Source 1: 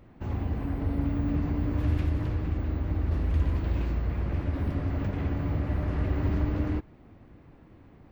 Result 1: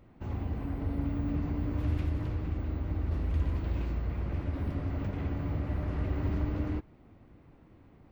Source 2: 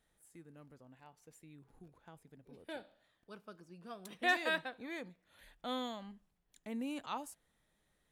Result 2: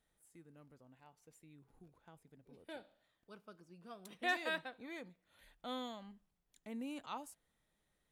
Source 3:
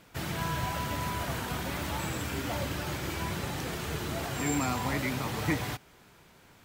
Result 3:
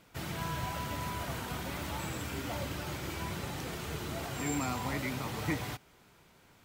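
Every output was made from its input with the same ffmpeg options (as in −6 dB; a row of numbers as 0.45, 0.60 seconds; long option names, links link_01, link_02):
-af "bandreject=frequency=1700:width=23,volume=-4dB"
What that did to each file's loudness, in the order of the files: −4.0, −4.0, −4.0 LU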